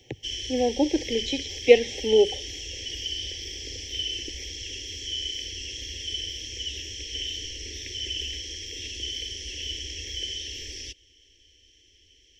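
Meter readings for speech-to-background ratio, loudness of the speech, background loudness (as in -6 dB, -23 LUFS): 8.5 dB, -23.5 LUFS, -32.0 LUFS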